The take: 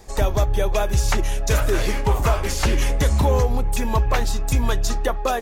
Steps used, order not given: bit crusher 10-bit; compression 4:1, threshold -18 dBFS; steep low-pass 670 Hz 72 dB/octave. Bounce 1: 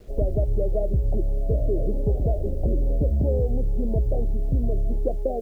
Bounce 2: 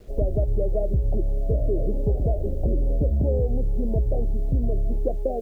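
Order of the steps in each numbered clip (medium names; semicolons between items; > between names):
steep low-pass > compression > bit crusher; steep low-pass > bit crusher > compression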